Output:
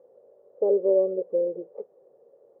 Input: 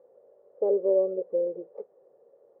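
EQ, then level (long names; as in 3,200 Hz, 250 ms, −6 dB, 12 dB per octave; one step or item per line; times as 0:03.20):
tilt shelving filter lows +4 dB, about 930 Hz
0.0 dB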